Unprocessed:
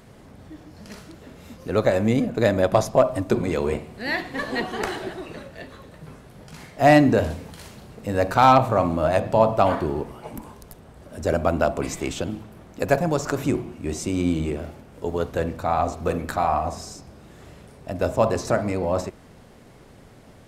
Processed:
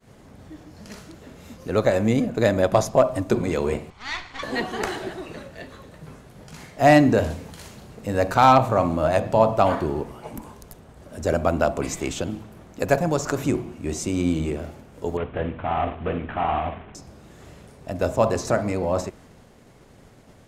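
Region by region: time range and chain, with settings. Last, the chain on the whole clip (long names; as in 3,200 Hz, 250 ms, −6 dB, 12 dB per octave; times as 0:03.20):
0:03.90–0:04.43: lower of the sound and its delayed copy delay 0.9 ms + low-pass filter 5,100 Hz + parametric band 230 Hz −15 dB 2.3 octaves
0:15.17–0:16.95: variable-slope delta modulation 16 kbit/s + notch filter 520 Hz
whole clip: downward expander −45 dBFS; parametric band 6,700 Hz +3.5 dB 0.32 octaves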